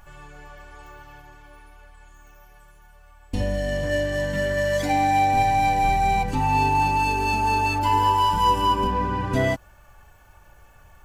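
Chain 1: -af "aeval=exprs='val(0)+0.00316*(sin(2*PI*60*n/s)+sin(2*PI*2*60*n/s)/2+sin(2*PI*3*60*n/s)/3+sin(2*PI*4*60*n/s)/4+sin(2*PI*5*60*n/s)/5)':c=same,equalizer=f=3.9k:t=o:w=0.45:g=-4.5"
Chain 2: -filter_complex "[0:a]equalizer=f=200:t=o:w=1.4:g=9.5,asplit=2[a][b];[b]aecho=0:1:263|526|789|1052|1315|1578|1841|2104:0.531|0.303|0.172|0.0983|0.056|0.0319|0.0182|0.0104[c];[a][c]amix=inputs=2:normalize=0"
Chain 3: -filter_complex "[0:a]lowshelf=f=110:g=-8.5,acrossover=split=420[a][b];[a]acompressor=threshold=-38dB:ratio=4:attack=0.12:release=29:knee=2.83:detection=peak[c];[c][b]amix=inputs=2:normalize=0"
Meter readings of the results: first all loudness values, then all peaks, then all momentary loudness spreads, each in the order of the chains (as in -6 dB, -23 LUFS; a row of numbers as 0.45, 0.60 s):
-22.0, -18.5, -22.5 LUFS; -9.5, -5.5, -10.0 dBFS; 6, 12, 8 LU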